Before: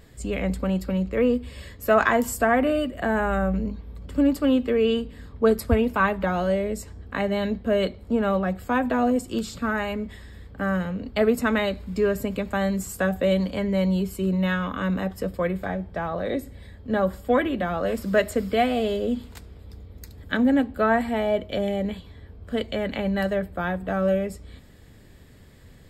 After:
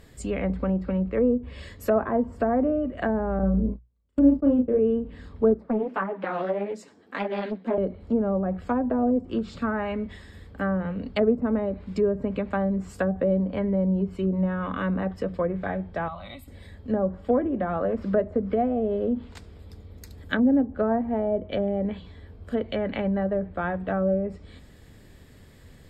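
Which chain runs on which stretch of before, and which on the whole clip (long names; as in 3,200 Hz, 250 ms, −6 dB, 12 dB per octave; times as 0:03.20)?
0:03.39–0:04.79: noise gate −30 dBFS, range −39 dB + double-tracking delay 36 ms −4 dB
0:05.54–0:07.78: high-pass filter 210 Hz 24 dB per octave + flanger 1.7 Hz, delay 2.1 ms, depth 9.5 ms, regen +1% + highs frequency-modulated by the lows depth 0.56 ms
0:16.08–0:16.48: parametric band 310 Hz −14 dB 1.9 octaves + phaser with its sweep stopped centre 1,700 Hz, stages 6
whole clip: mains-hum notches 60/120/180 Hz; treble cut that deepens with the level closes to 620 Hz, closed at −19.5 dBFS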